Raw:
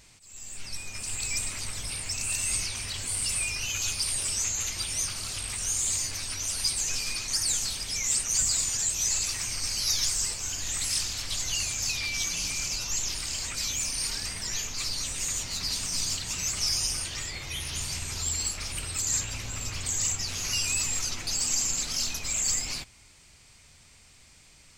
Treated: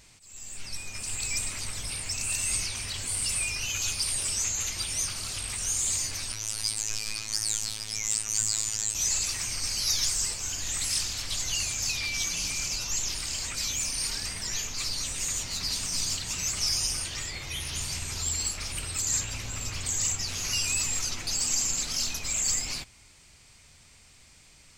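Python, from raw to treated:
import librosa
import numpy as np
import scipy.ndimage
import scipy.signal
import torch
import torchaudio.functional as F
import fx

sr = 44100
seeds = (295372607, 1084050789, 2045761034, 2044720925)

y = fx.robotise(x, sr, hz=108.0, at=(6.32, 8.95))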